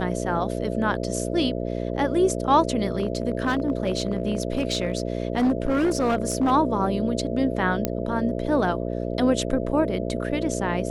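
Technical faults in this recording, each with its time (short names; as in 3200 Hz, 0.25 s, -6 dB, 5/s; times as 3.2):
buzz 60 Hz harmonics 11 -28 dBFS
2.92–6.52 clipped -17 dBFS
7.85 pop -8 dBFS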